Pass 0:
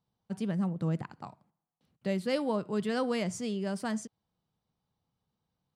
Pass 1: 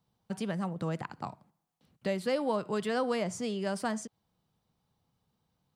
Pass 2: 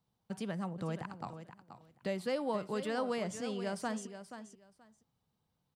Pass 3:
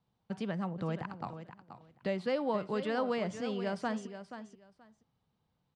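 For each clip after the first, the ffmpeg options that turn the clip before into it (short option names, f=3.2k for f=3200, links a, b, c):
-filter_complex "[0:a]acrossover=split=490|1300[a][b][c];[a]acompressor=threshold=-41dB:ratio=4[d];[b]acompressor=threshold=-35dB:ratio=4[e];[c]acompressor=threshold=-46dB:ratio=4[f];[d][e][f]amix=inputs=3:normalize=0,volume=5.5dB"
-af "aecho=1:1:479|958:0.282|0.0507,volume=-4.5dB"
-af "lowpass=4.2k,volume=2.5dB"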